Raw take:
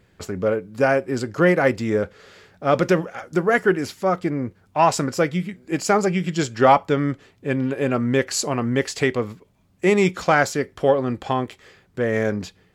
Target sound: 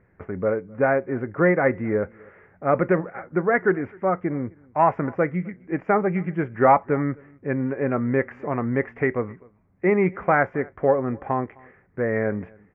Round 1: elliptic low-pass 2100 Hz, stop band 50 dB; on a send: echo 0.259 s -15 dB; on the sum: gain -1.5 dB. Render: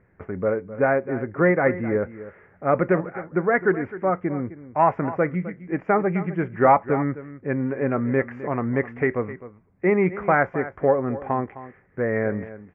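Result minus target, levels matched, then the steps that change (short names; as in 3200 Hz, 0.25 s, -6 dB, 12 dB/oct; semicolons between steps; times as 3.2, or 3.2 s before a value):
echo-to-direct +11.5 dB
change: echo 0.259 s -26.5 dB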